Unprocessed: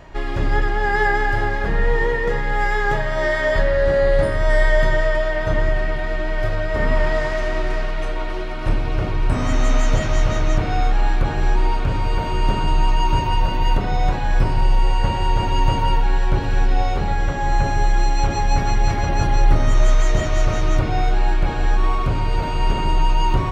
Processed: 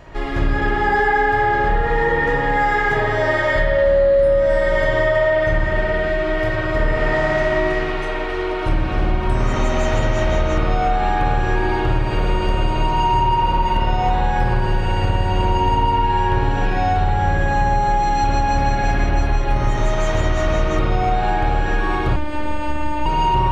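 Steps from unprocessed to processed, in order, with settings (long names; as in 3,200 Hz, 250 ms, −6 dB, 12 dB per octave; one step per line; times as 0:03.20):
convolution reverb RT60 2.1 s, pre-delay 54 ms, DRR −4 dB
downward compressor 5 to 1, threshold −13 dBFS, peak gain reduction 10.5 dB
0:22.16–0:23.06: phases set to zero 300 Hz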